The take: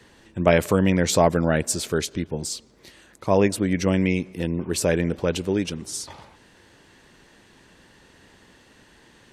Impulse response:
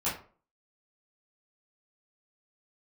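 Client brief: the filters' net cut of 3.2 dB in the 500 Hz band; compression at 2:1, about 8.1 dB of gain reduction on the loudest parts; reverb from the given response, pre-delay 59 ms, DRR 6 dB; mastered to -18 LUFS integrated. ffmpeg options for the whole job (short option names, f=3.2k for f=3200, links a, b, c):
-filter_complex "[0:a]equalizer=f=500:t=o:g=-4,acompressor=threshold=-29dB:ratio=2,asplit=2[a][b];[1:a]atrim=start_sample=2205,adelay=59[c];[b][c]afir=irnorm=-1:irlink=0,volume=-13.5dB[d];[a][d]amix=inputs=2:normalize=0,volume=11dB"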